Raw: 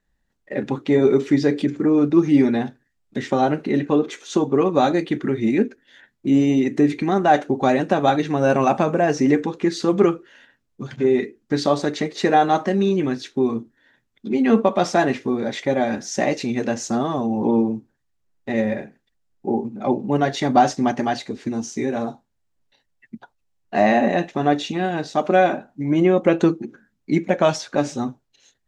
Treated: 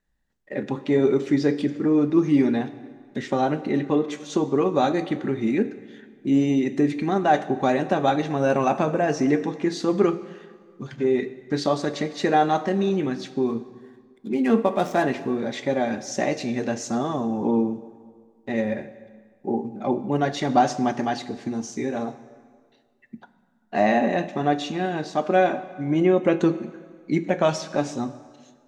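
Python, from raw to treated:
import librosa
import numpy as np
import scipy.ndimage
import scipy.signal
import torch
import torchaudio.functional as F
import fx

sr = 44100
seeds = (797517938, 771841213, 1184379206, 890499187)

y = fx.median_filter(x, sr, points=9, at=(13.47, 15.03))
y = fx.rev_plate(y, sr, seeds[0], rt60_s=1.8, hf_ratio=0.8, predelay_ms=0, drr_db=12.5)
y = y * librosa.db_to_amplitude(-3.5)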